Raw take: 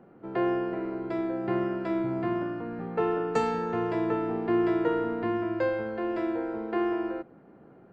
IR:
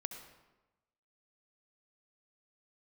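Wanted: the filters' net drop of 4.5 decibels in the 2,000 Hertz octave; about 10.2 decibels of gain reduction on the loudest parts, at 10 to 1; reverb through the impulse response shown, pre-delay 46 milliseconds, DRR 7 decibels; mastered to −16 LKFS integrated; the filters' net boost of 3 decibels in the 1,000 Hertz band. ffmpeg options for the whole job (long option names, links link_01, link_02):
-filter_complex "[0:a]equalizer=frequency=1000:width_type=o:gain=6,equalizer=frequency=2000:width_type=o:gain=-8.5,acompressor=threshold=-31dB:ratio=10,asplit=2[link_01][link_02];[1:a]atrim=start_sample=2205,adelay=46[link_03];[link_02][link_03]afir=irnorm=-1:irlink=0,volume=-5.5dB[link_04];[link_01][link_04]amix=inputs=2:normalize=0,volume=17.5dB"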